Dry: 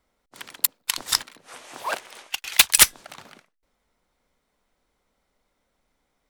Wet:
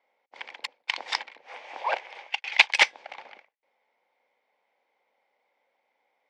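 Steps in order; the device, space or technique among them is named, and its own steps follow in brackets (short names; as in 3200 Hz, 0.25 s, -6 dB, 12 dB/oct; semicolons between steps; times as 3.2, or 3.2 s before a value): phone earpiece (speaker cabinet 490–4400 Hz, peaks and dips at 520 Hz +7 dB, 830 Hz +10 dB, 1300 Hz -7 dB, 2200 Hz +9 dB, 4000 Hz -5 dB); gain -2 dB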